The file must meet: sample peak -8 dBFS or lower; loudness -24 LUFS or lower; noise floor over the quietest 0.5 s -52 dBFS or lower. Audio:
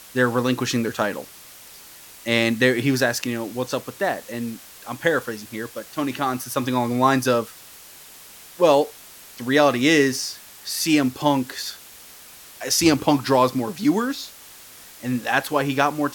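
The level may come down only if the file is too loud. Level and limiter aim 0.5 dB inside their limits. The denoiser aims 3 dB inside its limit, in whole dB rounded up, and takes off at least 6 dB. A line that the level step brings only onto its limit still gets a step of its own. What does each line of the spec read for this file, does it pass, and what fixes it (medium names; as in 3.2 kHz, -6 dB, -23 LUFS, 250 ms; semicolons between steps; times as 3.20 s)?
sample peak -4.0 dBFS: fail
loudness -21.5 LUFS: fail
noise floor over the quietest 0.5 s -44 dBFS: fail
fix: noise reduction 8 dB, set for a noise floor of -44 dBFS; trim -3 dB; peak limiter -8.5 dBFS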